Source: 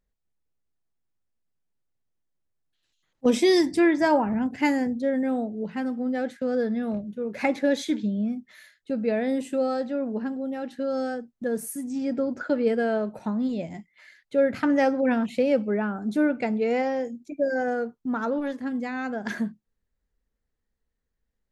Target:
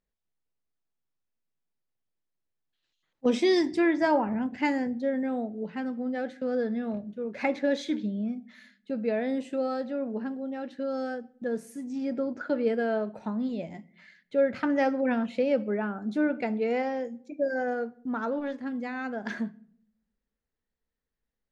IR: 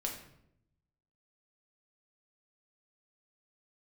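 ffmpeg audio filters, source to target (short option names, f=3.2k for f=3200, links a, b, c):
-filter_complex "[0:a]lowpass=5.3k,lowshelf=f=110:g=-7.5,asplit=2[a][b];[1:a]atrim=start_sample=2205,asetrate=52920,aresample=44100[c];[b][c]afir=irnorm=-1:irlink=0,volume=-14dB[d];[a][d]amix=inputs=2:normalize=0,volume=-4dB"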